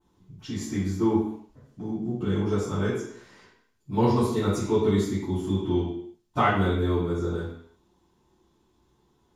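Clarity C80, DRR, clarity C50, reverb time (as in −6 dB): 5.0 dB, −16.5 dB, 1.5 dB, non-exponential decay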